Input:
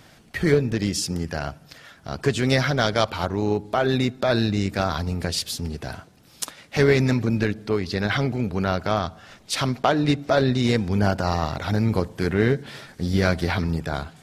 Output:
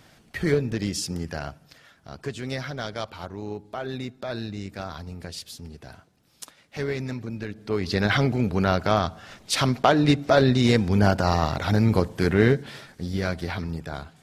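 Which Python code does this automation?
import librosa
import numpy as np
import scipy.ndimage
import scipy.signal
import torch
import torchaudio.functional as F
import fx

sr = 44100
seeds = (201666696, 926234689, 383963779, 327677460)

y = fx.gain(x, sr, db=fx.line((1.33, -3.5), (2.34, -11.0), (7.46, -11.0), (7.89, 1.5), (12.47, 1.5), (13.13, -6.5)))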